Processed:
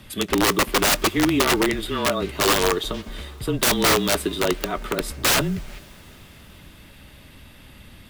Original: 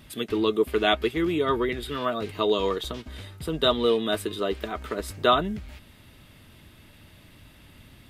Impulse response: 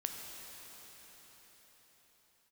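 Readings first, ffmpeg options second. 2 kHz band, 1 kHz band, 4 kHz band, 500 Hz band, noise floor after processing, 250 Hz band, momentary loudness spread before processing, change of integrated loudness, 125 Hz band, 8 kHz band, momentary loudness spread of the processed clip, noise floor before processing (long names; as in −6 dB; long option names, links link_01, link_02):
+8.5 dB, +4.0 dB, +6.0 dB, +0.5 dB, −47 dBFS, +4.5 dB, 11 LU, +5.0 dB, +7.0 dB, +20.5 dB, 10 LU, −53 dBFS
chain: -filter_complex "[0:a]afreqshift=-28,aeval=exprs='(mod(7.94*val(0)+1,2)-1)/7.94':channel_layout=same,asplit=2[link_01][link_02];[1:a]atrim=start_sample=2205,adelay=22[link_03];[link_02][link_03]afir=irnorm=-1:irlink=0,volume=-21dB[link_04];[link_01][link_04]amix=inputs=2:normalize=0,volume=5.5dB"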